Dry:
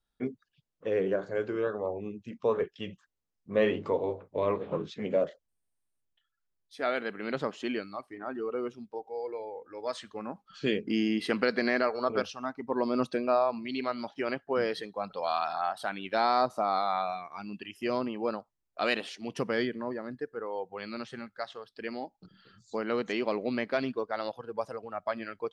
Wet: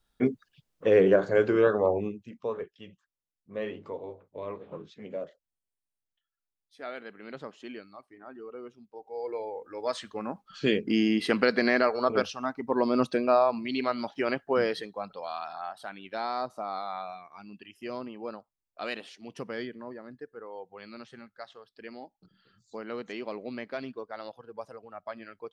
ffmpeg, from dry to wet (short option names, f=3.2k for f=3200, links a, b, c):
-af "volume=21dB,afade=t=out:st=1.98:d=0.2:silence=0.298538,afade=t=out:st=2.18:d=0.57:silence=0.446684,afade=t=in:st=8.93:d=0.44:silence=0.237137,afade=t=out:st=14.54:d=0.74:silence=0.316228"